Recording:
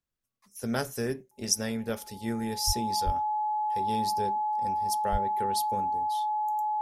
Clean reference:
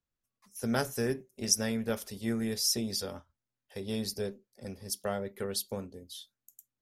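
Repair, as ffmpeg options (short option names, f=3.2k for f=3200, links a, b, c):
-filter_complex "[0:a]bandreject=f=850:w=30,asplit=3[a][b][c];[a]afade=t=out:st=2.66:d=0.02[d];[b]highpass=f=140:w=0.5412,highpass=f=140:w=1.3066,afade=t=in:st=2.66:d=0.02,afade=t=out:st=2.78:d=0.02[e];[c]afade=t=in:st=2.78:d=0.02[f];[d][e][f]amix=inputs=3:normalize=0,asplit=3[g][h][i];[g]afade=t=out:st=3.05:d=0.02[j];[h]highpass=f=140:w=0.5412,highpass=f=140:w=1.3066,afade=t=in:st=3.05:d=0.02,afade=t=out:st=3.17:d=0.02[k];[i]afade=t=in:st=3.17:d=0.02[l];[j][k][l]amix=inputs=3:normalize=0,asplit=3[m][n][o];[m]afade=t=out:st=5.11:d=0.02[p];[n]highpass=f=140:w=0.5412,highpass=f=140:w=1.3066,afade=t=in:st=5.11:d=0.02,afade=t=out:st=5.23:d=0.02[q];[o]afade=t=in:st=5.23:d=0.02[r];[p][q][r]amix=inputs=3:normalize=0"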